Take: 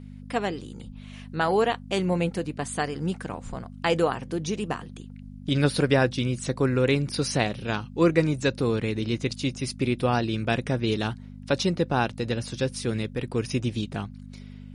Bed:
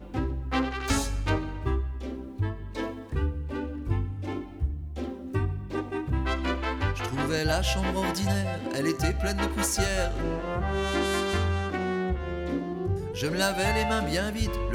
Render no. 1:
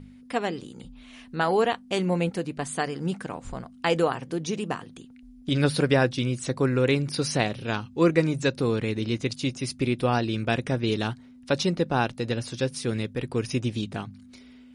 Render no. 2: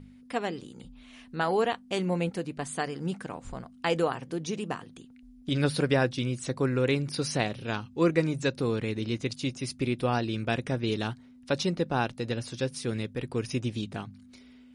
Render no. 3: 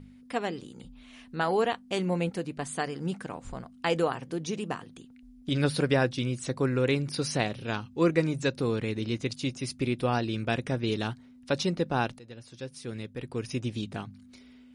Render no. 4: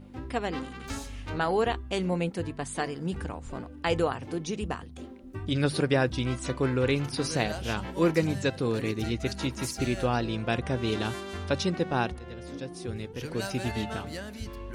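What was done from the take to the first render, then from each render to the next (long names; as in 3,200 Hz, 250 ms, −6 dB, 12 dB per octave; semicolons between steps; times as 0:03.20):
hum removal 50 Hz, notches 4
level −3.5 dB
0:12.19–0:13.92: fade in linear, from −18 dB
mix in bed −10.5 dB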